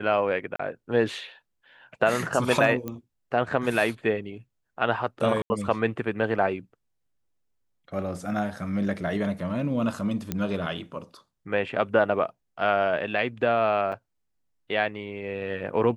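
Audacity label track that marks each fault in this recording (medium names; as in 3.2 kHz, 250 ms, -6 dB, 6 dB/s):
0.560000	0.590000	dropout 34 ms
2.880000	2.880000	pop -19 dBFS
5.420000	5.500000	dropout 80 ms
10.320000	10.320000	pop -13 dBFS
13.920000	13.930000	dropout 5.1 ms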